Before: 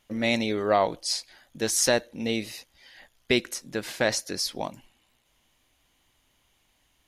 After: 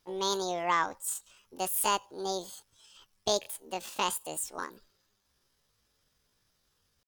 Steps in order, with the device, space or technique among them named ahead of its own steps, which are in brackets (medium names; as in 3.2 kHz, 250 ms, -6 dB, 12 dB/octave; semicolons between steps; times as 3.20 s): chipmunk voice (pitch shift +9 st); trim -5.5 dB